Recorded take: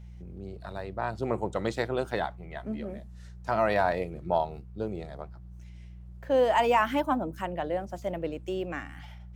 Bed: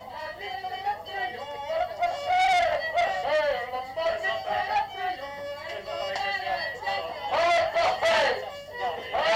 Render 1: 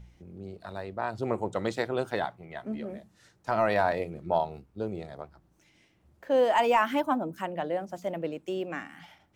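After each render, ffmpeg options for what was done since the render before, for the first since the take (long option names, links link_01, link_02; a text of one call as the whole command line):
ffmpeg -i in.wav -af "bandreject=frequency=60:width_type=h:width=4,bandreject=frequency=120:width_type=h:width=4,bandreject=frequency=180:width_type=h:width=4" out.wav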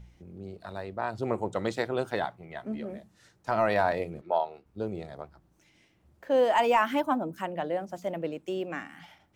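ffmpeg -i in.wav -filter_complex "[0:a]asettb=1/sr,asplit=3[link_01][link_02][link_03];[link_01]atrim=end=4.214[link_04];[link_02]atrim=start=4.21:end=4.66,asetpts=PTS-STARTPTS,afade=type=in:duration=0.004:curve=qsin,afade=type=out:start_time=0.446:duration=0.004:curve=qsin,acrossover=split=340 4600:gain=0.1 1 0.251[link_05][link_06][link_07];[link_05][link_06][link_07]amix=inputs=3:normalize=0[link_08];[link_03]atrim=start=4.656[link_09];[link_04][link_08]acrossfade=duration=0.004:curve1=hsin:curve2=qsin[link_10];[link_10][link_09]acrossfade=duration=0.004:curve1=qsin:curve2=hsin" out.wav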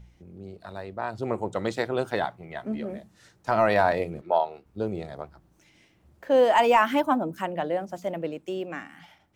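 ffmpeg -i in.wav -af "dynaudnorm=framelen=400:gausssize=9:maxgain=4dB" out.wav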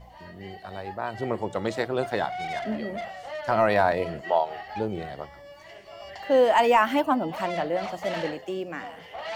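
ffmpeg -i in.wav -i bed.wav -filter_complex "[1:a]volume=-11dB[link_01];[0:a][link_01]amix=inputs=2:normalize=0" out.wav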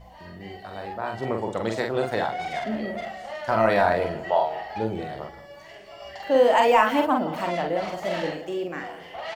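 ffmpeg -i in.wav -filter_complex "[0:a]asplit=2[link_01][link_02];[link_02]adelay=45,volume=-4dB[link_03];[link_01][link_03]amix=inputs=2:normalize=0,asplit=2[link_04][link_05];[link_05]adelay=171,lowpass=frequency=2000:poles=1,volume=-16dB,asplit=2[link_06][link_07];[link_07]adelay=171,lowpass=frequency=2000:poles=1,volume=0.47,asplit=2[link_08][link_09];[link_09]adelay=171,lowpass=frequency=2000:poles=1,volume=0.47,asplit=2[link_10][link_11];[link_11]adelay=171,lowpass=frequency=2000:poles=1,volume=0.47[link_12];[link_04][link_06][link_08][link_10][link_12]amix=inputs=5:normalize=0" out.wav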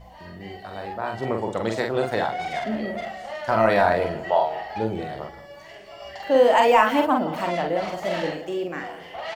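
ffmpeg -i in.wav -af "volume=1.5dB" out.wav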